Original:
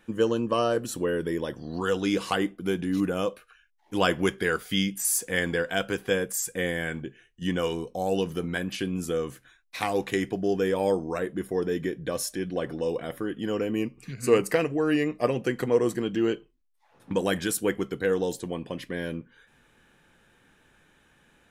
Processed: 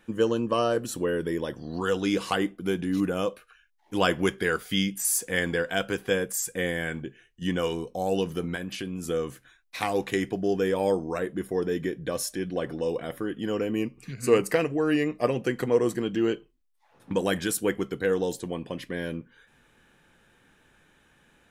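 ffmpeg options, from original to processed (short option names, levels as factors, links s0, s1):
-filter_complex "[0:a]asettb=1/sr,asplit=3[s0][s1][s2];[s0]atrim=end=8.554[s3];[s1]atrim=start=8.55:end=9.05,asetpts=PTS-STARTPTS,afade=t=in:d=0.004:c=qsin,afade=t=out:st=0.496:d=0.004:c=qsin,acompressor=threshold=0.0251:ratio=2:attack=3.2:release=140:knee=1:detection=peak[s4];[s2]atrim=start=9.046[s5];[s3][s4]acrossfade=d=0.004:c1=hsin:c2=qsin[s6];[s6][s5]acrossfade=d=0.004:c1=qsin:c2=hsin"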